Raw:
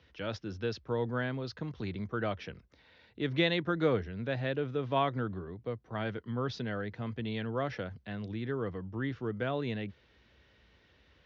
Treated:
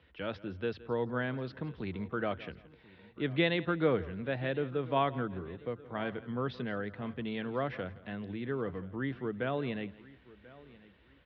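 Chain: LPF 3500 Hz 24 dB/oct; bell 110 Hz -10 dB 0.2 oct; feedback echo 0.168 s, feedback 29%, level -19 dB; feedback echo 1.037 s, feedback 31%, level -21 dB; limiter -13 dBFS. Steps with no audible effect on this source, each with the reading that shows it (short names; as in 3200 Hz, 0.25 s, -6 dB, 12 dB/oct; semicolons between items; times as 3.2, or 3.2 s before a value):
limiter -13 dBFS: input peak -15.5 dBFS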